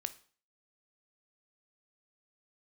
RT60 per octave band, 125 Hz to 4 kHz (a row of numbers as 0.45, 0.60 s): 0.45, 0.45, 0.45, 0.45, 0.40, 0.40 s